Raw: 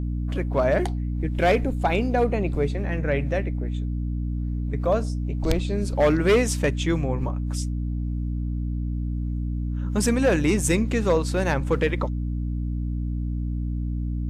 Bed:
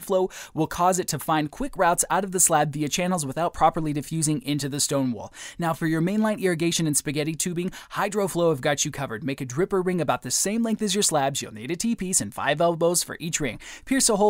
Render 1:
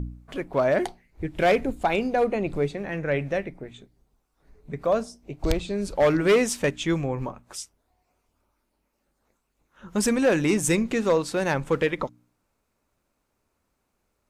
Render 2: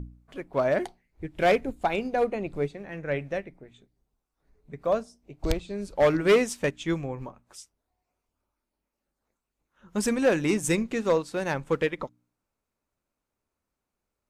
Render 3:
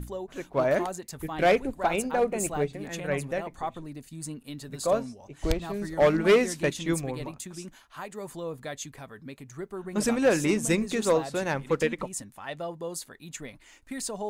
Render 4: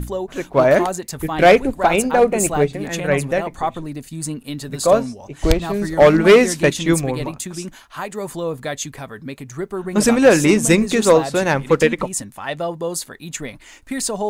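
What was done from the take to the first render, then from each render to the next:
hum removal 60 Hz, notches 5
expander for the loud parts 1.5 to 1, over −35 dBFS
mix in bed −14 dB
level +11 dB; brickwall limiter −3 dBFS, peak gain reduction 1.5 dB

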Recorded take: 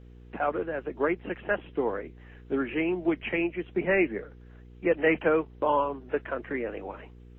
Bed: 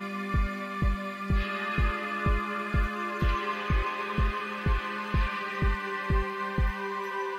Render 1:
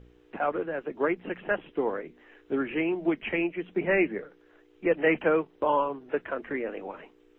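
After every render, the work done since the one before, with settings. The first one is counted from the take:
hum removal 60 Hz, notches 4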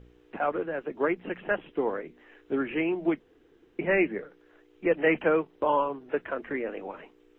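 0:03.20–0:03.79: fill with room tone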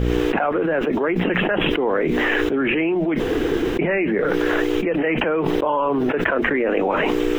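envelope flattener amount 100%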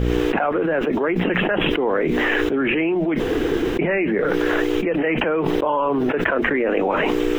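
no processing that can be heard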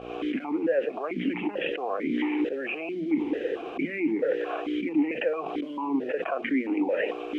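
in parallel at −11.5 dB: bit reduction 5 bits
on the sum: formant filter that steps through the vowels 4.5 Hz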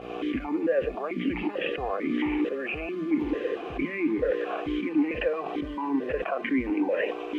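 mix in bed −16.5 dB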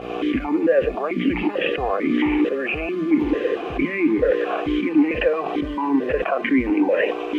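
level +7.5 dB

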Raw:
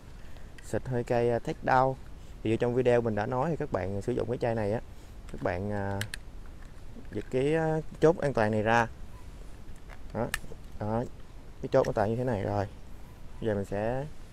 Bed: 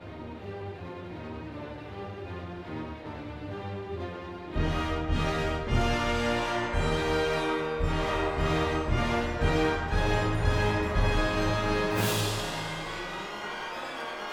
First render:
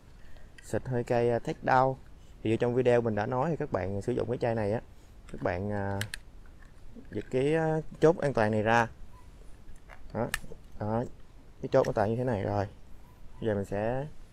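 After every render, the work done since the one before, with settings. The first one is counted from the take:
noise reduction from a noise print 6 dB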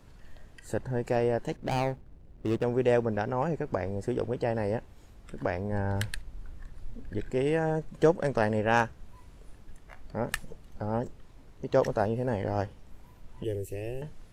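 0:01.56–0:02.64: running median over 41 samples
0:05.72–0:07.30: low-shelf EQ 100 Hz +10 dB
0:13.44–0:14.02: drawn EQ curve 110 Hz 0 dB, 220 Hz −18 dB, 370 Hz +4 dB, 540 Hz −9 dB, 930 Hz −22 dB, 1,400 Hz −27 dB, 2,300 Hz +3 dB, 3,700 Hz −3 dB, 7,100 Hz +3 dB, 12,000 Hz +13 dB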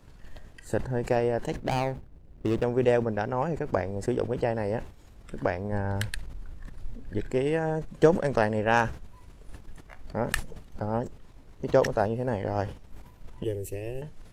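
transient designer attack +4 dB, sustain −2 dB
level that may fall only so fast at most 120 dB per second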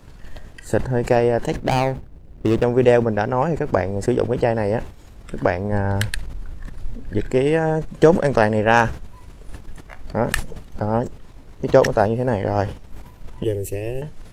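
level +8.5 dB
brickwall limiter −2 dBFS, peak gain reduction 3 dB

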